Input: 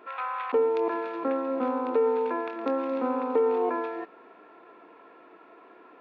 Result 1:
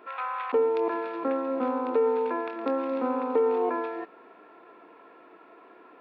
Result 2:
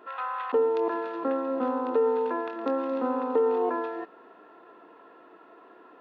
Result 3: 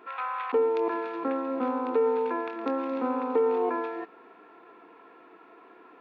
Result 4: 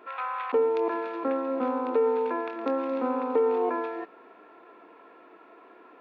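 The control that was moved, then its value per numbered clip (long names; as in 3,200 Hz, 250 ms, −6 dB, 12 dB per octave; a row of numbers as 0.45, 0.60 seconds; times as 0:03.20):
notch filter, centre frequency: 6,400, 2,300, 590, 160 Hertz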